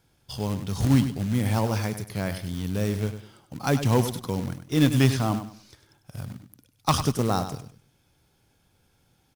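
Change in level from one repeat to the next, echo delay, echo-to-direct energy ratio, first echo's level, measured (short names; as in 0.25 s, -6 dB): -11.5 dB, 99 ms, -10.0 dB, -10.5 dB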